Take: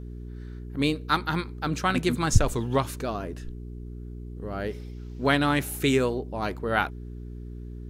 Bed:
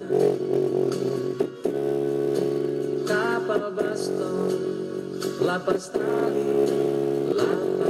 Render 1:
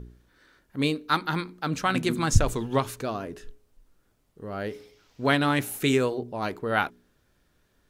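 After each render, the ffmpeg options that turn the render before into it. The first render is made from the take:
ffmpeg -i in.wav -af "bandreject=frequency=60:width_type=h:width=4,bandreject=frequency=120:width_type=h:width=4,bandreject=frequency=180:width_type=h:width=4,bandreject=frequency=240:width_type=h:width=4,bandreject=frequency=300:width_type=h:width=4,bandreject=frequency=360:width_type=h:width=4,bandreject=frequency=420:width_type=h:width=4" out.wav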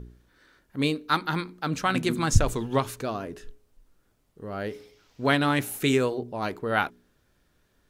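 ffmpeg -i in.wav -af anull out.wav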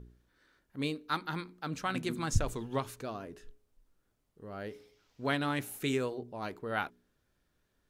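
ffmpeg -i in.wav -af "volume=-9dB" out.wav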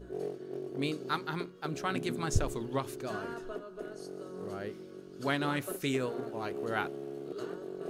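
ffmpeg -i in.wav -i bed.wav -filter_complex "[1:a]volume=-17dB[link_01];[0:a][link_01]amix=inputs=2:normalize=0" out.wav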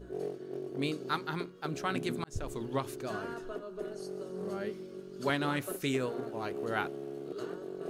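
ffmpeg -i in.wav -filter_complex "[0:a]asettb=1/sr,asplit=3[link_01][link_02][link_03];[link_01]atrim=end=3.624[link_04];[link_02]atrim=start=3.62:end=5.3,asetpts=PTS-STARTPTS,afade=type=in:duration=0.004:curve=qsin,afade=type=out:start_time=1.676:duration=0.004:curve=qsin,aecho=1:1:5.1:0.63,atrim=end_sample=74088[link_05];[link_03]atrim=start=5.296[link_06];[link_04][link_05]acrossfade=duration=0.004:curve1=hsin:curve2=qsin[link_07];[link_07][link_06]acrossfade=duration=0.004:curve1=qsin:curve2=hsin,asplit=2[link_08][link_09];[link_08]atrim=end=2.24,asetpts=PTS-STARTPTS,afade=type=out:start_time=2.236:duration=0.004:curve=hsin[link_10];[link_09]atrim=start=2.24,asetpts=PTS-STARTPTS,afade=type=in:duration=0.4[link_11];[link_10][link_11]concat=n=2:v=0:a=1" out.wav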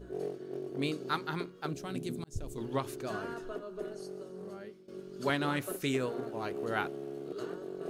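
ffmpeg -i in.wav -filter_complex "[0:a]asettb=1/sr,asplit=3[link_01][link_02][link_03];[link_01]atrim=end=1.734[link_04];[link_02]atrim=start=1.73:end=2.58,asetpts=PTS-STARTPTS,afade=type=in:duration=0.004:curve=qsin,afade=type=out:start_time=0.846:duration=0.004:curve=qsin,equalizer=frequency=1400:width=0.48:gain=-13[link_05];[link_03]atrim=start=2.576[link_06];[link_04][link_05]acrossfade=duration=0.004:curve1=hsin:curve2=qsin[link_07];[link_07][link_06]acrossfade=duration=0.004:curve1=qsin:curve2=hsin,asplit=2[link_08][link_09];[link_08]atrim=end=4.88,asetpts=PTS-STARTPTS,afade=type=out:start_time=3.78:duration=1.1:silence=0.158489[link_10];[link_09]atrim=start=4.88,asetpts=PTS-STARTPTS,afade=type=in:duration=0.004:curve=hsin:silence=0.158489[link_11];[link_10][link_11]concat=n=2:v=0:a=1" out.wav

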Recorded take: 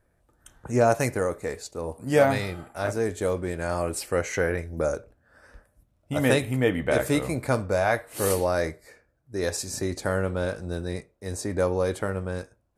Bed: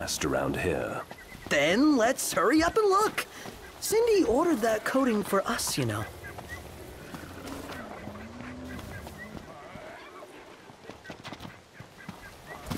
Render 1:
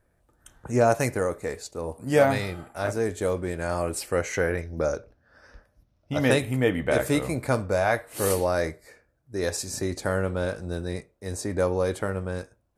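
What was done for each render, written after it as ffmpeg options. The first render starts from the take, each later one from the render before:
ffmpeg -i in.wav -filter_complex "[0:a]asettb=1/sr,asplit=3[link_01][link_02][link_03];[link_01]atrim=end=4.614[link_04];[link_02]atrim=start=4.61:end=6.31,asetpts=PTS-STARTPTS,afade=type=in:duration=0.004:curve=qsin,afade=type=out:start_time=1.696:duration=0.004:curve=qsin,highshelf=frequency=6700:width_type=q:width=3:gain=-6.5[link_05];[link_03]atrim=start=6.306[link_06];[link_04][link_05]acrossfade=duration=0.004:curve1=hsin:curve2=qsin[link_07];[link_07][link_06]acrossfade=duration=0.004:curve1=qsin:curve2=hsin" out.wav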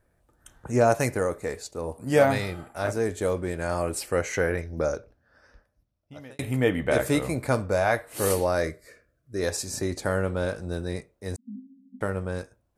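ffmpeg -i in.wav -filter_complex "[0:a]asettb=1/sr,asplit=3[link_01][link_02][link_03];[link_01]atrim=end=8.634[link_04];[link_02]atrim=start=8.63:end=9.41,asetpts=PTS-STARTPTS,afade=type=in:duration=0.004:curve=qsin,afade=type=out:start_time=0.776:duration=0.004:curve=qsin,asuperstop=centerf=840:order=8:qfactor=2.7[link_05];[link_03]atrim=start=9.406[link_06];[link_04][link_05]acrossfade=duration=0.004:curve1=hsin:curve2=qsin[link_07];[link_07][link_06]acrossfade=duration=0.004:curve1=qsin:curve2=hsin,asettb=1/sr,asplit=3[link_08][link_09][link_10];[link_08]atrim=end=11.364[link_11];[link_09]atrim=start=11.36:end=12.01,asetpts=PTS-STARTPTS,afade=type=in:duration=0.004:curve=qsin,afade=type=out:start_time=0.646:duration=0.004:curve=qsin,asuperpass=centerf=230:order=20:qfactor=3.5[link_12];[link_10]atrim=start=12.006[link_13];[link_11][link_12]acrossfade=duration=0.004:curve1=hsin:curve2=qsin[link_14];[link_14][link_13]acrossfade=duration=0.004:curve1=qsin:curve2=hsin,asplit=2[link_15][link_16];[link_15]atrim=end=6.39,asetpts=PTS-STARTPTS,afade=type=out:start_time=4.76:duration=1.63[link_17];[link_16]atrim=start=6.39,asetpts=PTS-STARTPTS,afade=type=in:duration=0.004:curve=hsin[link_18];[link_17][link_18]concat=n=2:v=0:a=1" out.wav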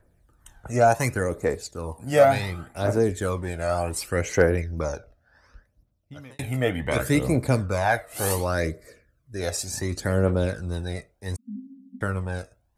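ffmpeg -i in.wav -filter_complex "[0:a]aphaser=in_gain=1:out_gain=1:delay=1.6:decay=0.57:speed=0.68:type=triangular,acrossover=split=440|1000[link_01][link_02][link_03];[link_03]volume=18dB,asoftclip=hard,volume=-18dB[link_04];[link_01][link_02][link_04]amix=inputs=3:normalize=0" out.wav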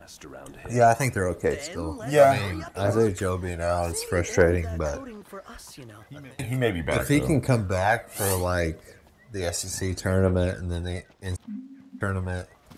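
ffmpeg -i in.wav -i bed.wav -filter_complex "[1:a]volume=-14.5dB[link_01];[0:a][link_01]amix=inputs=2:normalize=0" out.wav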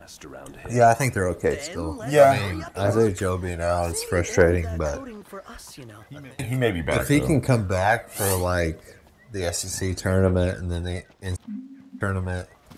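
ffmpeg -i in.wav -af "volume=2dB" out.wav

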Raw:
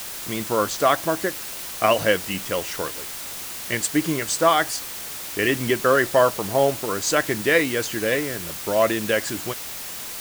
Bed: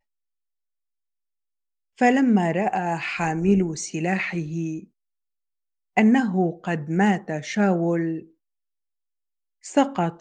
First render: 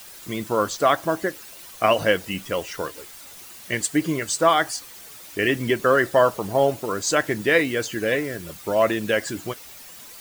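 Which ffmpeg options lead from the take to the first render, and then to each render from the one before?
ffmpeg -i in.wav -af "afftdn=noise_reduction=11:noise_floor=-34" out.wav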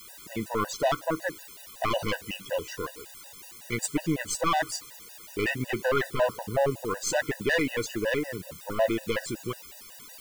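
ffmpeg -i in.wav -af "aeval=exprs='(tanh(6.31*val(0)+0.4)-tanh(0.4))/6.31':channel_layout=same,afftfilt=real='re*gt(sin(2*PI*5.4*pts/sr)*(1-2*mod(floor(b*sr/1024/500),2)),0)':imag='im*gt(sin(2*PI*5.4*pts/sr)*(1-2*mod(floor(b*sr/1024/500),2)),0)':win_size=1024:overlap=0.75" out.wav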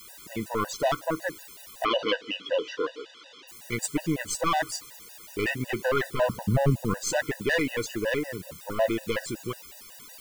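ffmpeg -i in.wav -filter_complex "[0:a]asplit=3[link_01][link_02][link_03];[link_01]afade=type=out:start_time=1.84:duration=0.02[link_04];[link_02]highpass=frequency=190:width=0.5412,highpass=frequency=190:width=1.3066,equalizer=frequency=190:width_type=q:width=4:gain=-9,equalizer=frequency=290:width_type=q:width=4:gain=7,equalizer=frequency=470:width_type=q:width=4:gain=9,equalizer=frequency=790:width_type=q:width=4:gain=-7,equalizer=frequency=1300:width_type=q:width=4:gain=6,equalizer=frequency=3200:width_type=q:width=4:gain=9,lowpass=frequency=5000:width=0.5412,lowpass=frequency=5000:width=1.3066,afade=type=in:start_time=1.84:duration=0.02,afade=type=out:start_time=3.47:duration=0.02[link_05];[link_03]afade=type=in:start_time=3.47:duration=0.02[link_06];[link_04][link_05][link_06]amix=inputs=3:normalize=0,asettb=1/sr,asplit=3[link_07][link_08][link_09];[link_07]atrim=end=6.294[link_10];[link_08]atrim=start=6.29:end=6.94,asetpts=PTS-STARTPTS,afade=type=in:duration=0.004:curve=qsin,afade=type=out:start_time=0.646:duration=0.004:curve=qsin,lowshelf=frequency=290:width_type=q:width=1.5:gain=10.5[link_11];[link_09]atrim=start=6.936[link_12];[link_10][link_11]acrossfade=duration=0.004:curve1=hsin:curve2=qsin[link_13];[link_13][link_12]acrossfade=duration=0.004:curve1=qsin:curve2=hsin" out.wav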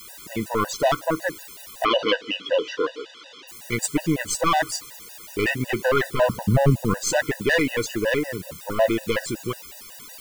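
ffmpeg -i in.wav -af "volume=5dB" out.wav

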